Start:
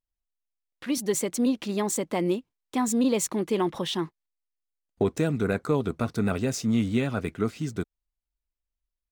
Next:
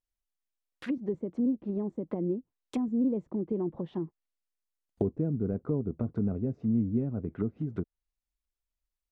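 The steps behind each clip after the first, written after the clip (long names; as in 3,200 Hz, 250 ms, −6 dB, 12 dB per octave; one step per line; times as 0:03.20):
treble cut that deepens with the level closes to 360 Hz, closed at −24.5 dBFS
level −2.5 dB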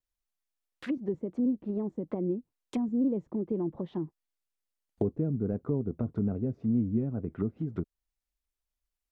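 pitch vibrato 2.4 Hz 65 cents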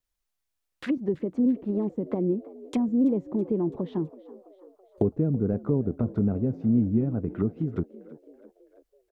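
echo with shifted repeats 330 ms, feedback 55%, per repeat +64 Hz, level −19.5 dB
level +5 dB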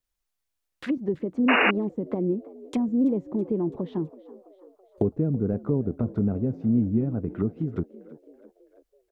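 sound drawn into the spectrogram noise, 0:01.48–0:01.71, 240–2,900 Hz −20 dBFS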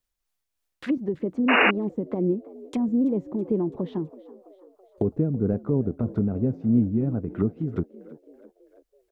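amplitude tremolo 3.1 Hz, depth 36%
level +2.5 dB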